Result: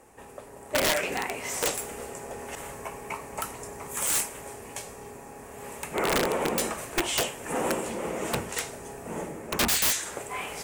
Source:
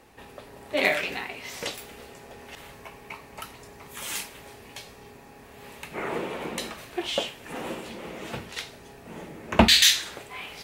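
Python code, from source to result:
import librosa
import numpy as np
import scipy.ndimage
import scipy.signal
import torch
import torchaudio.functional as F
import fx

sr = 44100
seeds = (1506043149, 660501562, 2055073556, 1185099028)

y = fx.graphic_eq(x, sr, hz=(500, 1000, 4000, 8000), db=(4, 3, -11, 12))
y = fx.rider(y, sr, range_db=4, speed_s=0.5)
y = (np.mod(10.0 ** (17.5 / 20.0) * y + 1.0, 2.0) - 1.0) / 10.0 ** (17.5 / 20.0)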